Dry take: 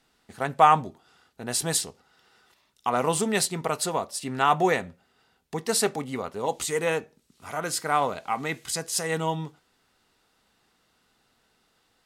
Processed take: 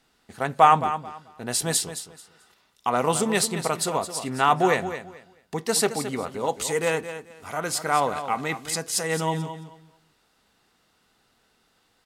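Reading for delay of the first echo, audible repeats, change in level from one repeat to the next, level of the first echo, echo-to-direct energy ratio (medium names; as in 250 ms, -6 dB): 218 ms, 2, -13.0 dB, -11.0 dB, -11.0 dB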